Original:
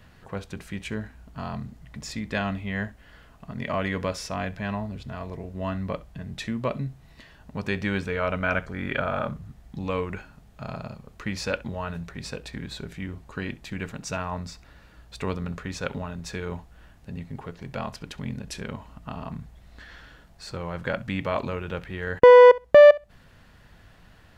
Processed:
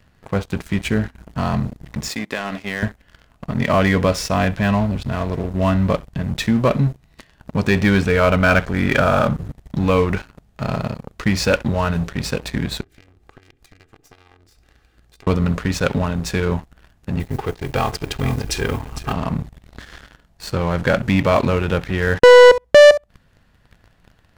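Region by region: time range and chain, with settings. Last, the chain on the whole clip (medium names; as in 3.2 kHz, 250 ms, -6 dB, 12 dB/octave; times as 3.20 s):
2.08–2.83 s: high-pass 300 Hz + compression, threshold -31 dBFS
12.81–15.27 s: comb filter that takes the minimum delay 2.5 ms + band-stop 960 Hz, Q 6.3 + compression 20:1, threshold -46 dBFS
17.19–19.13 s: modulation noise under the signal 27 dB + comb 2.5 ms, depth 66% + delay 456 ms -11.5 dB
whole clip: bass shelf 340 Hz +3 dB; waveshaping leveller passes 3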